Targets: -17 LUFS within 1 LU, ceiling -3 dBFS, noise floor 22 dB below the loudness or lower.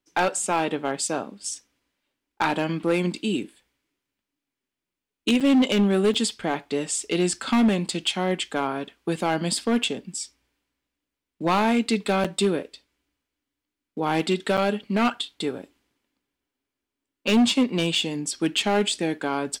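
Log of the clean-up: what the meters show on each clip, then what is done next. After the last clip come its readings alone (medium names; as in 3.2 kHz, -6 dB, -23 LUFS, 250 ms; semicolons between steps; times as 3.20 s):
clipped samples 1.2%; clipping level -14.5 dBFS; dropouts 4; longest dropout 6.2 ms; loudness -24.5 LUFS; peak level -14.5 dBFS; loudness target -17.0 LUFS
-> clip repair -14.5 dBFS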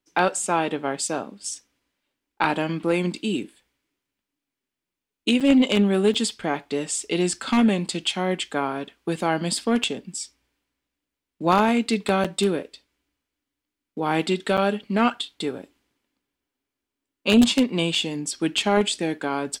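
clipped samples 0.0%; dropouts 4; longest dropout 6.2 ms
-> interpolate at 5.40/6.14/12.24/14.57 s, 6.2 ms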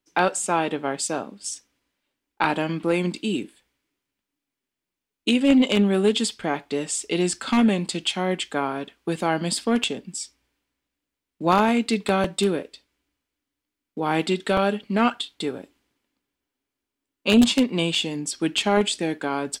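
dropouts 0; loudness -23.5 LUFS; peak level -5.5 dBFS; loudness target -17.0 LUFS
-> trim +6.5 dB; peak limiter -3 dBFS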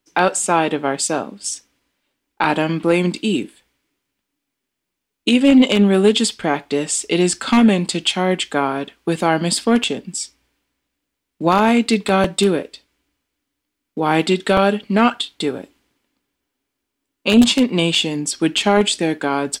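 loudness -17.5 LUFS; peak level -3.0 dBFS; noise floor -79 dBFS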